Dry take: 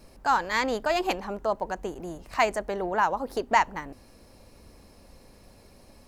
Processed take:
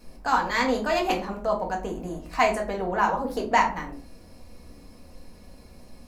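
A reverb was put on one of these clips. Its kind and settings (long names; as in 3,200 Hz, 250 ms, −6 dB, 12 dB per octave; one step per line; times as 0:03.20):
rectangular room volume 240 cubic metres, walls furnished, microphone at 1.9 metres
level −1.5 dB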